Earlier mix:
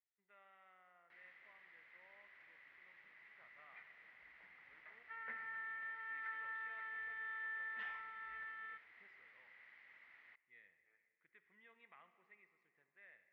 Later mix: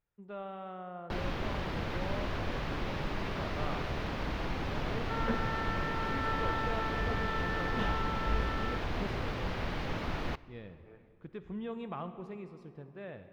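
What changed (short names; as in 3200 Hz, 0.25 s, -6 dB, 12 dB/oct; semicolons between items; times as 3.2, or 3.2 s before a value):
first sound +11.0 dB; second sound -4.5 dB; master: remove band-pass 2000 Hz, Q 10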